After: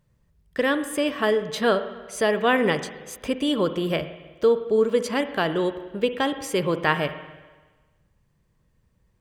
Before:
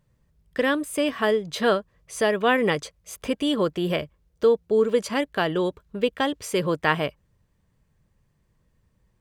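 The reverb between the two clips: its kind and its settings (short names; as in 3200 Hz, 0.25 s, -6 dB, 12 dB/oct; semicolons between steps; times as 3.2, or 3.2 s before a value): spring tank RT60 1.3 s, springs 47/59 ms, chirp 80 ms, DRR 10.5 dB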